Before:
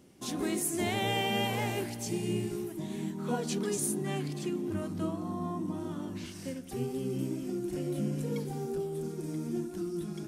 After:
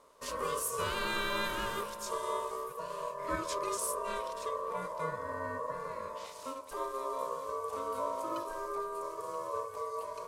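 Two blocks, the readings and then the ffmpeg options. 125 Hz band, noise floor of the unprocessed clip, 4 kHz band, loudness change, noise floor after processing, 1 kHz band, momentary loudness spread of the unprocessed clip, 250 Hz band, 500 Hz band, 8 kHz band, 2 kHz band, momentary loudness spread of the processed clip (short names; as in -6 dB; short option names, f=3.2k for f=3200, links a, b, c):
-16.0 dB, -43 dBFS, -3.5 dB, -2.5 dB, -47 dBFS, +5.0 dB, 7 LU, -15.5 dB, -1.5 dB, -3.5 dB, +1.0 dB, 7 LU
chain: -af "aeval=exprs='val(0)*sin(2*PI*800*n/s)':c=same,bandreject=f=690:w=13"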